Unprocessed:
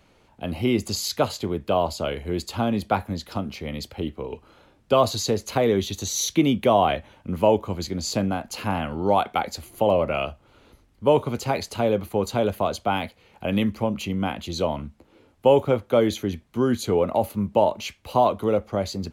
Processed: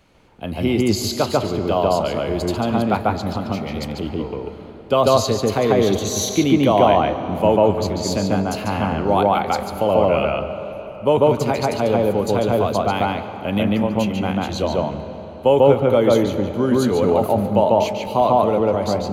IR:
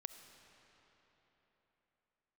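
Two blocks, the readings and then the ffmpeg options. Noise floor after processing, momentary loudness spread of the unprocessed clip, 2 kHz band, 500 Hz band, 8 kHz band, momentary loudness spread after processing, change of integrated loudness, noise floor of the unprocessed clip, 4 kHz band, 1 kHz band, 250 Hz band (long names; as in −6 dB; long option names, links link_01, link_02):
−35 dBFS, 11 LU, +4.0 dB, +5.5 dB, +2.0 dB, 10 LU, +5.5 dB, −59 dBFS, +3.0 dB, +5.5 dB, +5.5 dB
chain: -filter_complex "[0:a]asplit=2[link_01][link_02];[1:a]atrim=start_sample=2205,highshelf=frequency=3800:gain=-12,adelay=144[link_03];[link_02][link_03]afir=irnorm=-1:irlink=0,volume=6.5dB[link_04];[link_01][link_04]amix=inputs=2:normalize=0,volume=1.5dB"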